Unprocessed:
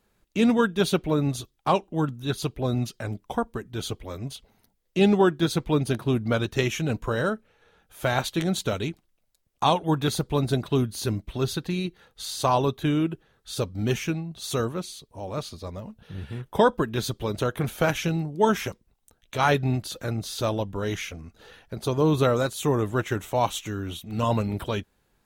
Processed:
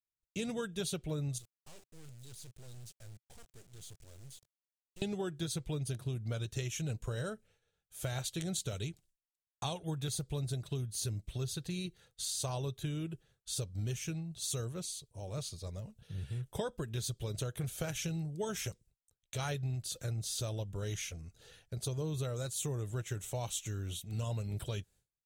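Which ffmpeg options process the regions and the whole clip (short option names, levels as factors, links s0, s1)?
-filter_complex "[0:a]asettb=1/sr,asplit=3[s0][s1][s2];[s0]atrim=end=1.384[s3];[s1]atrim=start=1.38:end=5.02,asetpts=PTS-STARTPTS,afade=t=in:d=0.004:c=qsin,afade=t=out:st=3.636:d=0.004:c=qsin,aeval=exprs='(tanh(56.2*val(0)+0.45)-tanh(0.45))/56.2':c=same,acrusher=bits=6:dc=4:mix=0:aa=0.000001[s4];[s2]atrim=start=5.016[s5];[s3][s4]acrossfade=d=0.004:c1=hsin:c2=qsin[s6];[s6][s5]acrossfade=d=0.004:c1=qsin:c2=hsin,agate=range=0.0224:threshold=0.00316:ratio=3:detection=peak,equalizer=f=125:t=o:w=1:g=7,equalizer=f=250:t=o:w=1:g=-10,equalizer=f=1000:t=o:w=1:g=-10,equalizer=f=2000:t=o:w=1:g=-3,equalizer=f=8000:t=o:w=1:g=10,acompressor=threshold=0.0447:ratio=6,volume=0.473"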